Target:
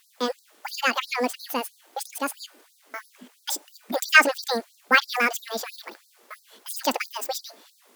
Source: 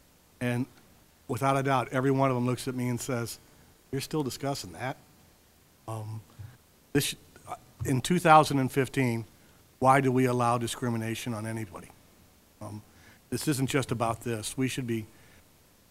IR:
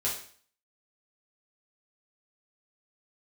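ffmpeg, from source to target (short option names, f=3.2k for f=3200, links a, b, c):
-af "asetrate=88200,aresample=44100,afftfilt=real='re*gte(b*sr/1024,200*pow(3900/200,0.5+0.5*sin(2*PI*3*pts/sr)))':imag='im*gte(b*sr/1024,200*pow(3900/200,0.5+0.5*sin(2*PI*3*pts/sr)))':win_size=1024:overlap=0.75,volume=5dB"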